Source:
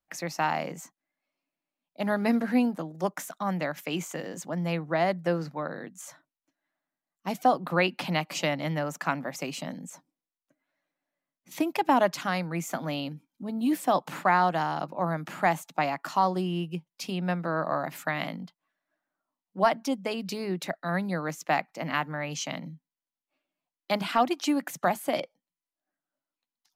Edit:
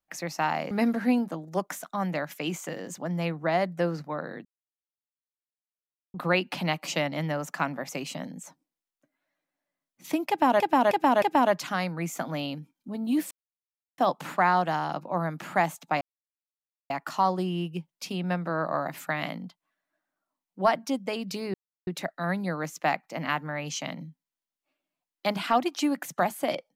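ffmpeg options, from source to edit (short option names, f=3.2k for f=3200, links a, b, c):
-filter_complex "[0:a]asplit=10[a][b][c][d][e][f][g][h][i][j];[a]atrim=end=0.712[k];[b]atrim=start=2.178:end=5.92,asetpts=PTS-STARTPTS,afade=t=out:st=3.738:d=0.004:c=hsin[l];[c]atrim=start=5.92:end=7.61,asetpts=PTS-STARTPTS,volume=0[m];[d]atrim=start=7.61:end=12.072,asetpts=PTS-STARTPTS,afade=t=in:d=0.004:c=hsin[n];[e]atrim=start=11.758:end=12.072[o];[f]atrim=start=11.758:end=12.072[p];[g]atrim=start=11.758:end=13.85,asetpts=PTS-STARTPTS,afade=t=out:st=2.088:d=0.004:c=hsin,apad=pad_dur=0.67[q];[h]atrim=start=13.85:end=15.88,asetpts=PTS-STARTPTS,afade=t=in:d=0.004:c=hsin,afade=t=out:st=2.026:d=0.004:c=hsin,apad=pad_dur=0.89[r];[i]atrim=start=15.88:end=20.52,asetpts=PTS-STARTPTS,afade=t=in:d=0.004:c=hsin,afade=t=out:st=4.636:d=0.004:c=hsin,apad=pad_dur=0.33[s];[j]atrim=start=20.52,asetpts=PTS-STARTPTS,afade=t=in:d=0.004:c=hsin[t];[l][m][n]concat=n=3:v=0:a=1[u];[k][u]acrossfade=d=0.004:c1=hsin:c2=hsin[v];[v][o]acrossfade=d=0.004:c1=hsin:c2=hsin[w];[w][p]acrossfade=d=0.004:c1=hsin:c2=hsin[x];[q][r][s][t]concat=n=4:v=0:a=1[y];[x][y]acrossfade=d=0.004:c1=hsin:c2=hsin"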